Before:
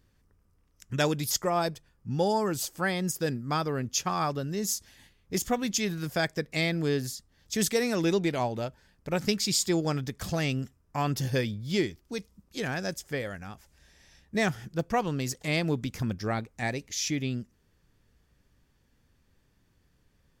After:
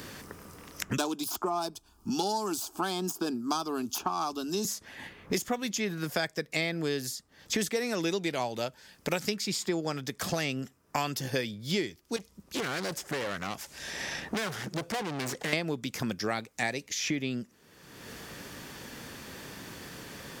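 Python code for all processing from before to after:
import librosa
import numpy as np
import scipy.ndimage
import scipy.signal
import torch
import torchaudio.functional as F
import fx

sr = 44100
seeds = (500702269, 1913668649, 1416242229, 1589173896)

y = fx.chain(x, sr, fx.self_delay(depth_ms=0.085),
    fx.fixed_phaser(hz=520.0, stages=6),
    fx.band_squash(depth_pct=40), at=(0.97, 4.65))
y = fx.chain(y, sr, fx.tube_stage(drive_db=41.0, bias=0.4),
    fx.doppler_dist(depth_ms=0.3), at=(12.16, 15.53))
y = fx.highpass(y, sr, hz=300.0, slope=6)
y = fx.band_squash(y, sr, depth_pct=100)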